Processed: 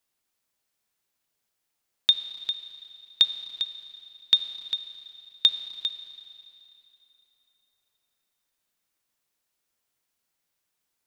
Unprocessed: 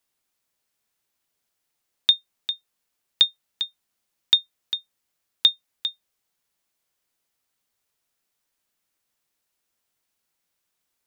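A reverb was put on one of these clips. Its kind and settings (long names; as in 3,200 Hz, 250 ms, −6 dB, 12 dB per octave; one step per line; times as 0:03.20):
four-comb reverb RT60 3 s, combs from 28 ms, DRR 10.5 dB
level −2 dB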